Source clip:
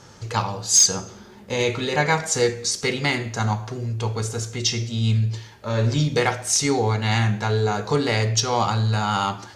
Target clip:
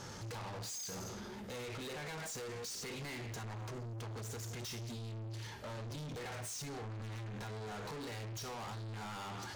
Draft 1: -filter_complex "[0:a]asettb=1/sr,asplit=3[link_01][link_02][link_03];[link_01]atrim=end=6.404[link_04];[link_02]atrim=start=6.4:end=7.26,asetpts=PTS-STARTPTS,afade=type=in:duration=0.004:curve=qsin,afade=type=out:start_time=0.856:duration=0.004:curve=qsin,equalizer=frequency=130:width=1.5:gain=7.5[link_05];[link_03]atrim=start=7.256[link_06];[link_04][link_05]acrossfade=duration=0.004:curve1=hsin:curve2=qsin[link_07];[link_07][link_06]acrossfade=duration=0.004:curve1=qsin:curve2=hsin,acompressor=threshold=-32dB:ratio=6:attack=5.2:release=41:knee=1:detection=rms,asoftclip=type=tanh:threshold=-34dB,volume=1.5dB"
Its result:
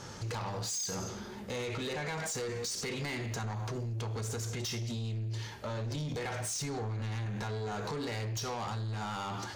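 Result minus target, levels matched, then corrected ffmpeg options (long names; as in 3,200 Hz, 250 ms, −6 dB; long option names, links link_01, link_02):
soft clipping: distortion −6 dB
-filter_complex "[0:a]asettb=1/sr,asplit=3[link_01][link_02][link_03];[link_01]atrim=end=6.404[link_04];[link_02]atrim=start=6.4:end=7.26,asetpts=PTS-STARTPTS,afade=type=in:duration=0.004:curve=qsin,afade=type=out:start_time=0.856:duration=0.004:curve=qsin,equalizer=frequency=130:width=1.5:gain=7.5[link_05];[link_03]atrim=start=7.256[link_06];[link_04][link_05]acrossfade=duration=0.004:curve1=hsin:curve2=qsin[link_07];[link_07][link_06]acrossfade=duration=0.004:curve1=qsin:curve2=hsin,acompressor=threshold=-32dB:ratio=6:attack=5.2:release=41:knee=1:detection=rms,asoftclip=type=tanh:threshold=-44dB,volume=1.5dB"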